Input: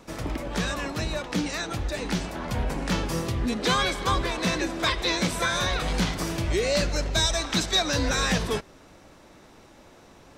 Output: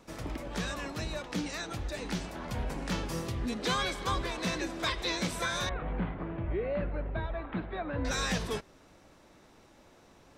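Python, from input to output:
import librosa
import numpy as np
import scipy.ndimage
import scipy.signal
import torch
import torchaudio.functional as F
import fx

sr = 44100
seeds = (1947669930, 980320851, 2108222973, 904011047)

y = fx.gaussian_blur(x, sr, sigma=4.4, at=(5.69, 8.05))
y = F.gain(torch.from_numpy(y), -7.0).numpy()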